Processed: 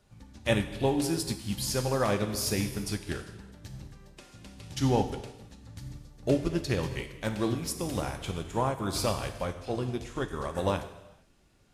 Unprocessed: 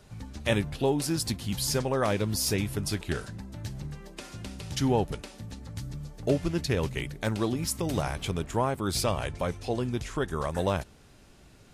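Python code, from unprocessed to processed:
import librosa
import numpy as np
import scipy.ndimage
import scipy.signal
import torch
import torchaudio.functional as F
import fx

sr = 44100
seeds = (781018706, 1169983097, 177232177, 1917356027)

y = fx.rev_gated(x, sr, seeds[0], gate_ms=480, shape='falling', drr_db=4.5)
y = fx.upward_expand(y, sr, threshold_db=-42.0, expansion=1.5)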